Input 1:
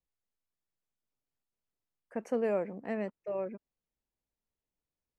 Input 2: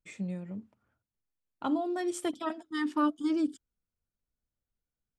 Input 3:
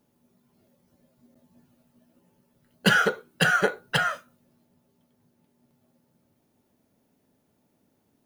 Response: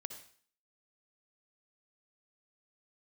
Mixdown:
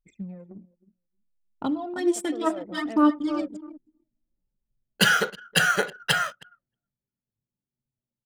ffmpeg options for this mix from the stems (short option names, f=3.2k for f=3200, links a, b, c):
-filter_complex "[0:a]aecho=1:1:1.5:0.71,volume=-2dB[a];[1:a]acompressor=threshold=-32dB:ratio=1.5,aphaser=in_gain=1:out_gain=1:delay=3.5:decay=0.69:speed=0.65:type=sinusoidal,highshelf=f=8.1k:g=4,volume=-4.5dB,asplit=4[b][c][d][e];[c]volume=-8.5dB[f];[d]volume=-10.5dB[g];[2:a]highshelf=f=2.3k:g=10,adelay=2150,volume=-9.5dB,asplit=3[h][i][j];[i]volume=-9.5dB[k];[j]volume=-21.5dB[l];[e]apad=whole_len=228940[m];[a][m]sidechaincompress=threshold=-45dB:ratio=10:attack=22:release=205[n];[3:a]atrim=start_sample=2205[o];[f][k]amix=inputs=2:normalize=0[p];[p][o]afir=irnorm=-1:irlink=0[q];[g][l]amix=inputs=2:normalize=0,aecho=0:1:315|630|945:1|0.2|0.04[r];[n][b][h][q][r]amix=inputs=5:normalize=0,anlmdn=0.0631,dynaudnorm=f=520:g=3:m=5.5dB"